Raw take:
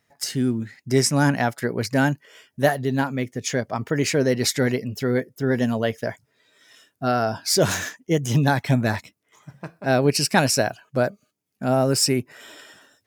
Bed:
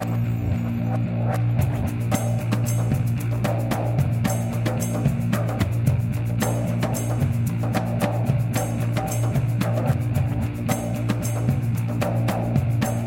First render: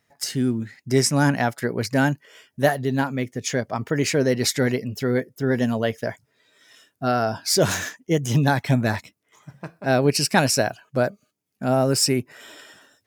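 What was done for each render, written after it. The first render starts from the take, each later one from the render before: nothing audible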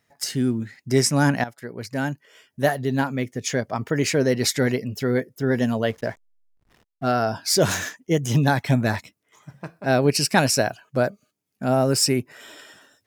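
1.44–2.96 fade in, from -14.5 dB; 5.89–7.13 backlash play -40.5 dBFS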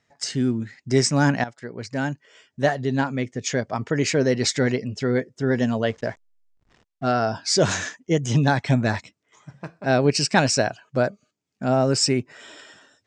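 steep low-pass 8100 Hz 48 dB/oct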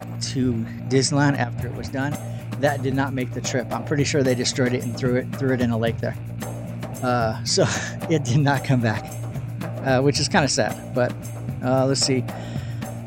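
add bed -8 dB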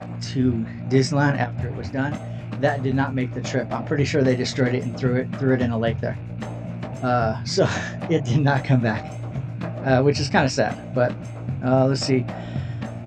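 air absorption 130 m; doubler 23 ms -7 dB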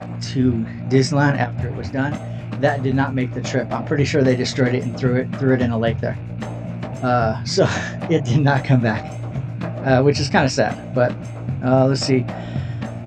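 gain +3 dB; limiter -3 dBFS, peak gain reduction 1.5 dB

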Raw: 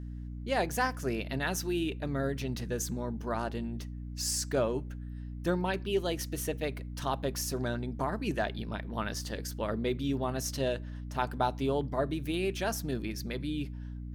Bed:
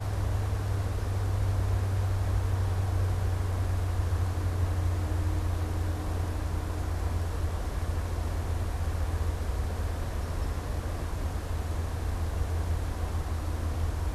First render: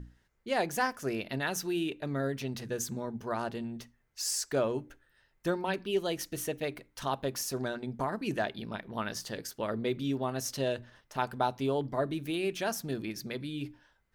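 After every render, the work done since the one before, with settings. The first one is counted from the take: notches 60/120/180/240/300 Hz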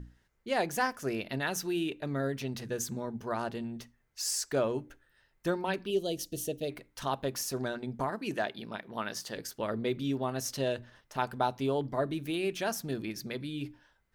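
5.9–6.7 band shelf 1400 Hz -15.5 dB; 8.1–9.36 HPF 220 Hz 6 dB/oct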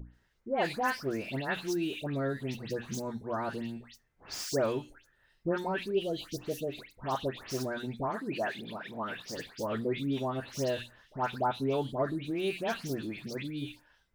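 median filter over 5 samples; dispersion highs, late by 0.145 s, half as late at 2100 Hz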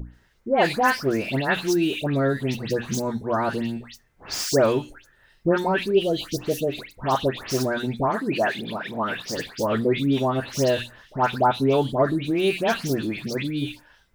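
gain +10.5 dB

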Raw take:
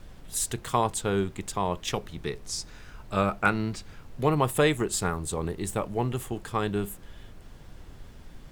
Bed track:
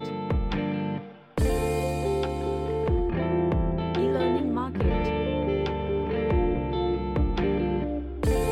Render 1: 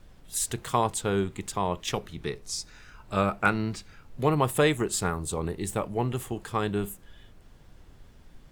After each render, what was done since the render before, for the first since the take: noise print and reduce 6 dB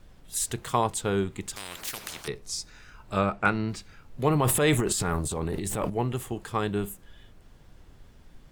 1.56–2.28 spectral compressor 10:1; 3.18–3.69 air absorption 51 m; 4.28–5.9 transient shaper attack -5 dB, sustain +11 dB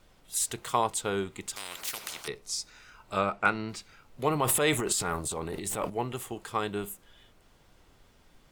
low shelf 280 Hz -11 dB; notch 1700 Hz, Q 14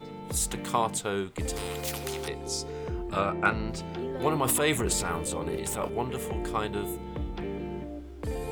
add bed track -9.5 dB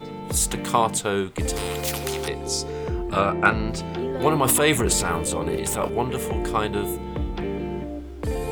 gain +6.5 dB

